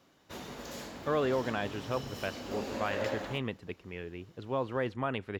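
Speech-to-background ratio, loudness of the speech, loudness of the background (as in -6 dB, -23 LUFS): 5.0 dB, -35.5 LUFS, -40.5 LUFS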